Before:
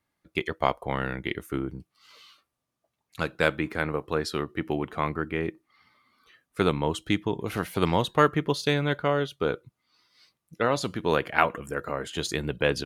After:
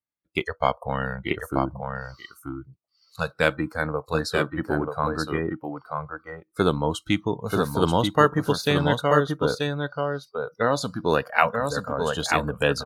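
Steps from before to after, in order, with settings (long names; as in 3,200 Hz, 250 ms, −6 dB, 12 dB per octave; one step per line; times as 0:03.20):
single-tap delay 934 ms −4 dB
noise reduction from a noise print of the clip's start 22 dB
level +2.5 dB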